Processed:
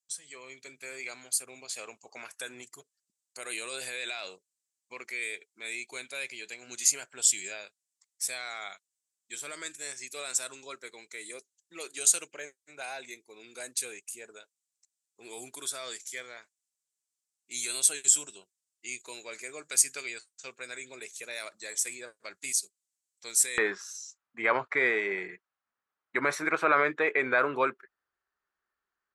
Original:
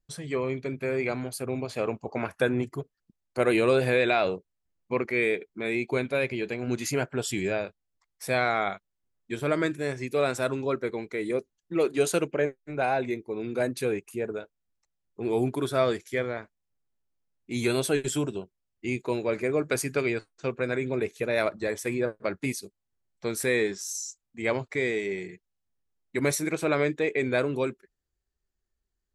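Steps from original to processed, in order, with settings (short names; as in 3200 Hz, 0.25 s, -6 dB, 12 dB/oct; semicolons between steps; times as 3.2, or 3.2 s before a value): AGC gain up to 5.5 dB; limiter -11 dBFS, peak gain reduction 5.5 dB; band-pass 7700 Hz, Q 2.4, from 23.58 s 1300 Hz; gain +8.5 dB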